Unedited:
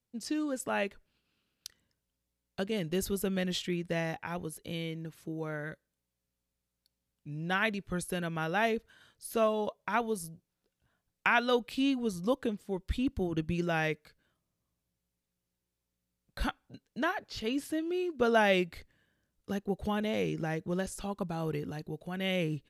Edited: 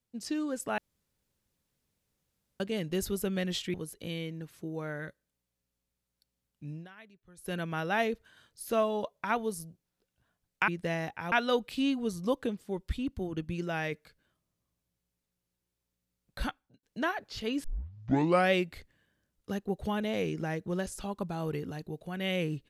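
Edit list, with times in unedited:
0.78–2.60 s: room tone
3.74–4.38 s: move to 11.32 s
7.34–8.18 s: dip -23 dB, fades 0.18 s
12.93–13.92 s: gain -3 dB
16.40–16.83 s: fade out
17.64 s: tape start 0.89 s

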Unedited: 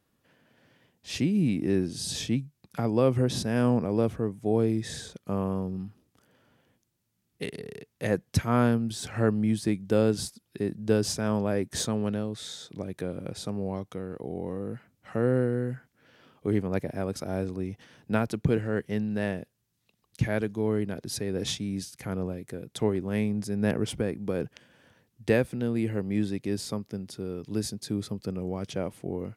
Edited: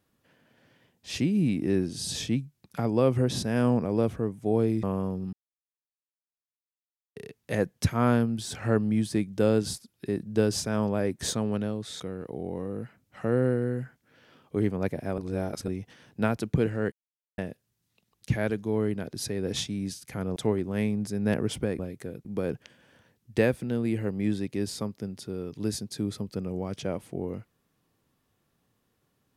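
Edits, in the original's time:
4.83–5.35 s: delete
5.85–7.68 s: mute
12.52–13.91 s: delete
17.09–17.59 s: reverse
18.83–19.29 s: mute
22.27–22.73 s: move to 24.16 s

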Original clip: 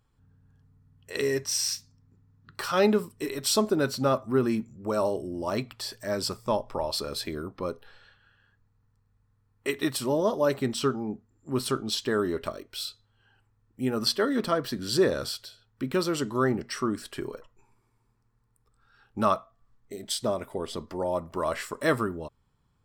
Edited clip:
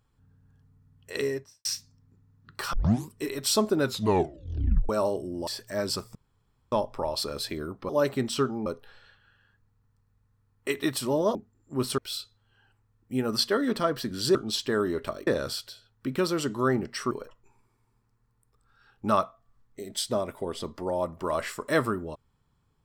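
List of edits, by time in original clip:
1.12–1.65 s: studio fade out
2.73 s: tape start 0.36 s
3.84 s: tape stop 1.05 s
5.47–5.80 s: delete
6.48 s: insert room tone 0.57 s
10.34–11.11 s: move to 7.65 s
11.74–12.66 s: move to 15.03 s
16.87–17.24 s: delete

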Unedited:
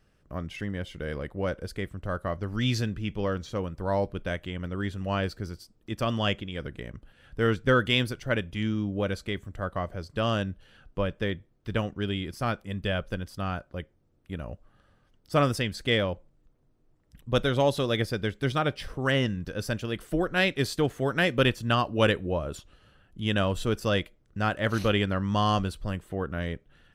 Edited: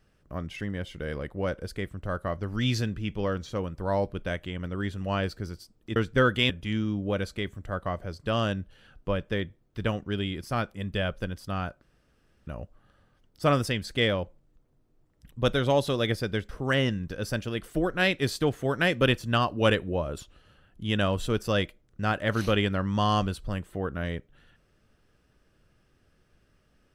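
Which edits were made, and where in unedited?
5.96–7.47 s: delete
8.01–8.40 s: delete
13.72–14.37 s: room tone
18.39–18.86 s: delete

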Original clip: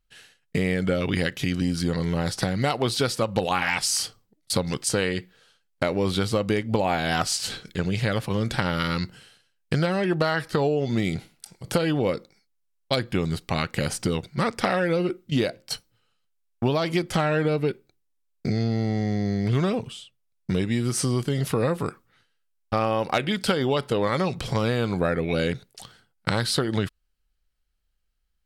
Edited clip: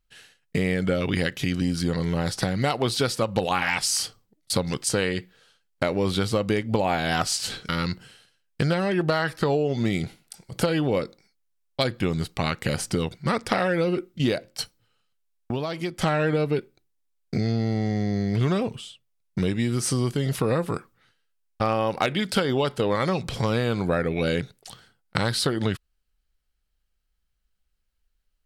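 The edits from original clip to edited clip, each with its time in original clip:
7.69–8.81 s: delete
16.63–17.11 s: gain -5.5 dB

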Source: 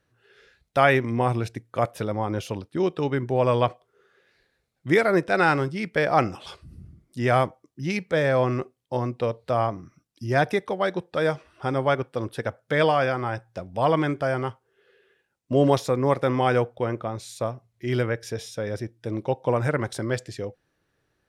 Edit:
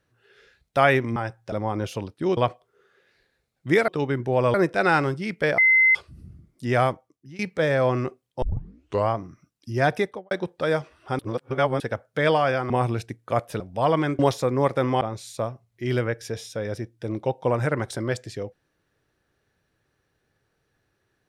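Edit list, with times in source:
1.16–2.06 s: swap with 13.24–13.60 s
2.91–3.57 s: move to 5.08 s
6.12–6.49 s: bleep 2.06 kHz -13.5 dBFS
7.32–7.93 s: fade out, to -20.5 dB
8.96 s: tape start 0.67 s
10.56–10.85 s: studio fade out
11.73–12.34 s: reverse
14.19–15.65 s: delete
16.47–17.03 s: delete

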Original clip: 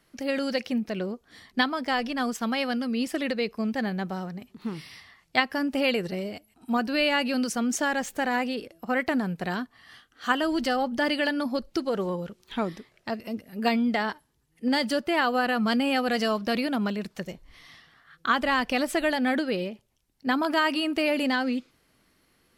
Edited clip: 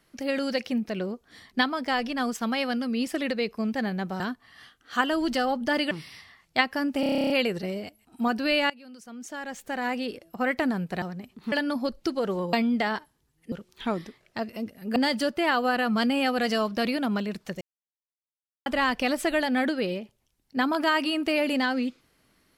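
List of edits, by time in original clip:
4.20–4.70 s: swap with 9.51–11.22 s
5.79 s: stutter 0.03 s, 11 plays
7.19–8.57 s: fade in quadratic, from -22 dB
13.67–14.66 s: move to 12.23 s
17.31–18.36 s: mute

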